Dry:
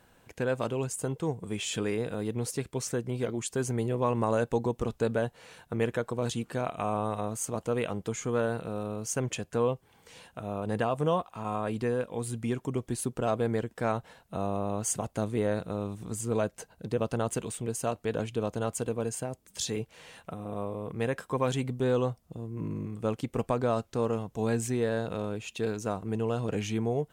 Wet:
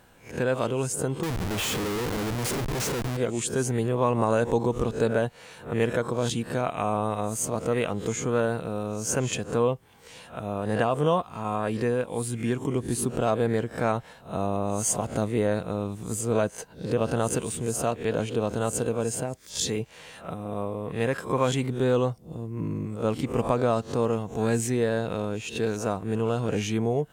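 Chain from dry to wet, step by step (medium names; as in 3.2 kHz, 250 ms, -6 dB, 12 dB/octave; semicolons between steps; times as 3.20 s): reverse spectral sustain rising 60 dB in 0.32 s; 1.23–3.17 s: Schmitt trigger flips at -38 dBFS; trim +3.5 dB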